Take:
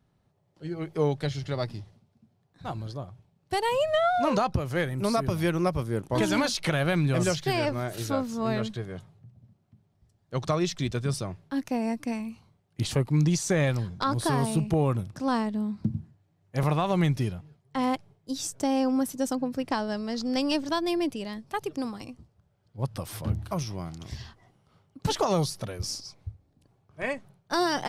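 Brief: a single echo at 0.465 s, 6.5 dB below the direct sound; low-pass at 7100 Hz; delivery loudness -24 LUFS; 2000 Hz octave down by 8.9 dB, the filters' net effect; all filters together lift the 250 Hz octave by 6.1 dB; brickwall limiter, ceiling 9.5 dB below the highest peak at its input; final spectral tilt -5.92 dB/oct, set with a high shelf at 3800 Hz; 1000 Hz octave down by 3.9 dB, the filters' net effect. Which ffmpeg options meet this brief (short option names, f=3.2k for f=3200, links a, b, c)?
-af "lowpass=7.1k,equalizer=f=250:t=o:g=8,equalizer=f=1k:t=o:g=-3.5,equalizer=f=2k:t=o:g=-9,highshelf=f=3.8k:g=-6.5,alimiter=limit=-19dB:level=0:latency=1,aecho=1:1:465:0.473,volume=4.5dB"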